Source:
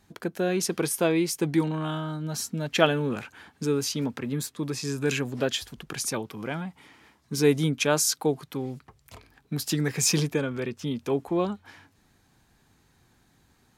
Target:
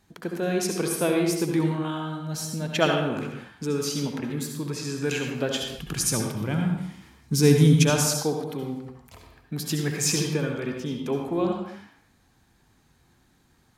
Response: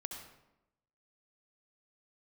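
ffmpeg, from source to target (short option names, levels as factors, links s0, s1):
-filter_complex "[0:a]asettb=1/sr,asplit=3[s0][s1][s2];[s0]atrim=end=5.784[s3];[s1]atrim=start=5.78:end=7.9,asetpts=PTS-STARTPTS,afade=t=in:d=0.004:c=qsin,afade=t=out:st=2.116:d=0.004:c=qsin,bass=f=250:g=12,treble=f=4000:g=7[s4];[s2]atrim=start=7.896[s5];[s3][s4]acrossfade=d=0.004:c1=hsin:c2=qsin[s6];[s6][s5]acrossfade=d=0.004:c1=qsin:c2=hsin[s7];[1:a]atrim=start_sample=2205,afade=t=out:st=0.39:d=0.01,atrim=end_sample=17640[s8];[s7][s8]afir=irnorm=-1:irlink=0,volume=1.26"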